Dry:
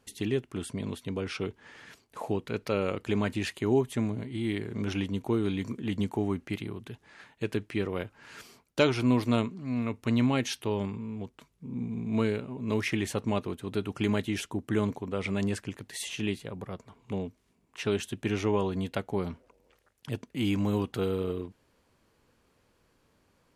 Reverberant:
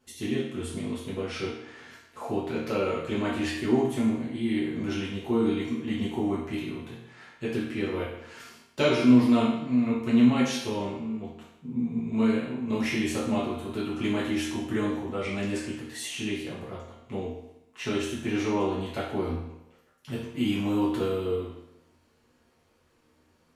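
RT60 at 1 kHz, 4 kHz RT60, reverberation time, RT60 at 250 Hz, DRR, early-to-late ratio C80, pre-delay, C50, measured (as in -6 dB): 0.85 s, 0.75 s, 0.85 s, 0.85 s, -8.5 dB, 5.5 dB, 4 ms, 2.0 dB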